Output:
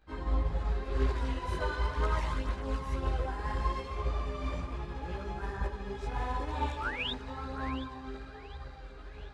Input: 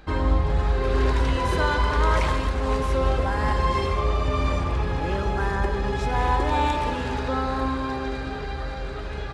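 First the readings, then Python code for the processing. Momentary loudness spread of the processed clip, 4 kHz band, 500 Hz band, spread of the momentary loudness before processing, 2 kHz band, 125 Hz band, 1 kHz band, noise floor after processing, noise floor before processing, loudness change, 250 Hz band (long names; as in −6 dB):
12 LU, −8.5 dB, −13.0 dB, 8 LU, −11.0 dB, −10.5 dB, −12.5 dB, −47 dBFS, −31 dBFS, −10.5 dB, −11.5 dB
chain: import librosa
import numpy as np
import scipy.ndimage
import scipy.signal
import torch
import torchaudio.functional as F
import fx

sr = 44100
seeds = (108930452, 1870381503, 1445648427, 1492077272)

p1 = fx.spec_paint(x, sr, seeds[0], shape='rise', start_s=6.8, length_s=0.32, low_hz=1200.0, high_hz=3900.0, level_db=-22.0)
p2 = p1 + fx.echo_split(p1, sr, split_hz=1100.0, low_ms=113, high_ms=721, feedback_pct=52, wet_db=-14.0, dry=0)
p3 = fx.chorus_voices(p2, sr, voices=2, hz=0.98, base_ms=17, depth_ms=3.0, mix_pct=60)
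p4 = fx.upward_expand(p3, sr, threshold_db=-32.0, expansion=1.5)
y = p4 * 10.0 ** (-7.0 / 20.0)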